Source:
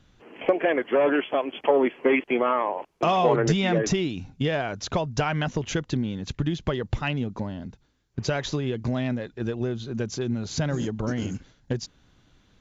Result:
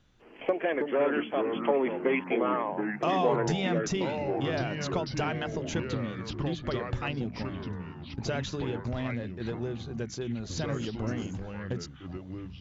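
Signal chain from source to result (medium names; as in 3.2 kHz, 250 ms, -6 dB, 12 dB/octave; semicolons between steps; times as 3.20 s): hum notches 50/100/150/200/250/300 Hz; ever faster or slower copies 195 ms, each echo -4 st, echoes 3, each echo -6 dB; trim -6 dB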